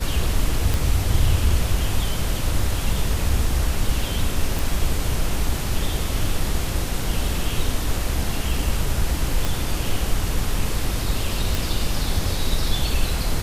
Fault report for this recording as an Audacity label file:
0.740000	0.740000	pop
4.590000	4.590000	pop
9.450000	9.450000	pop
11.550000	11.550000	pop

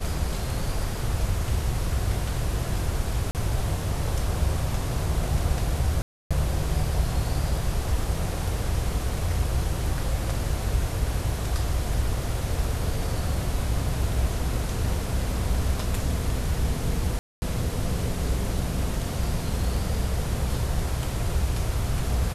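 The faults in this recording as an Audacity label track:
3.310000	3.350000	gap 38 ms
6.020000	6.310000	gap 0.286 s
17.190000	17.420000	gap 0.23 s

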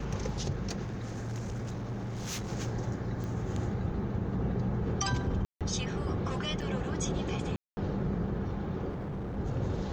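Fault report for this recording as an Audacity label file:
0.850000	2.510000	clipped -33 dBFS
3.240000	3.240000	pop -27 dBFS
5.450000	5.610000	gap 0.157 s
6.610000	6.620000	gap 5.7 ms
7.560000	7.770000	gap 0.21 s
8.890000	9.380000	clipped -34 dBFS

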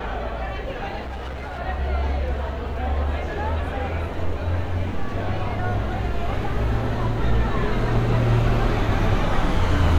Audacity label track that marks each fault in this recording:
1.010000	1.600000	clipped -28 dBFS

